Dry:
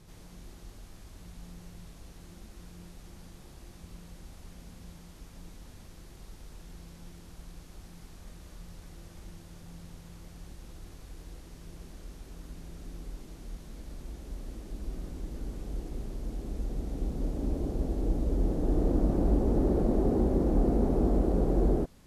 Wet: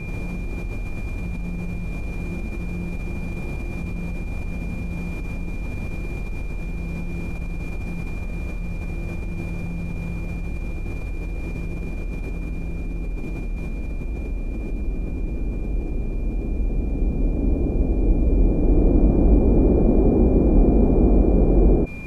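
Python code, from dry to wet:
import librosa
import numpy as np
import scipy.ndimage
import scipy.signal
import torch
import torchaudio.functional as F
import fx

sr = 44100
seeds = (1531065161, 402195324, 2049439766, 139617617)

p1 = x + 10.0 ** (-48.0 / 20.0) * np.sin(2.0 * np.pi * 2400.0 * np.arange(len(x)) / sr)
p2 = fx.over_compress(p1, sr, threshold_db=-48.0, ratio=-1.0)
p3 = p1 + F.gain(torch.from_numpy(p2), 2.0).numpy()
p4 = fx.tilt_shelf(p3, sr, db=9.0, hz=1300.0)
y = F.gain(torch.from_numpy(p4), 1.0).numpy()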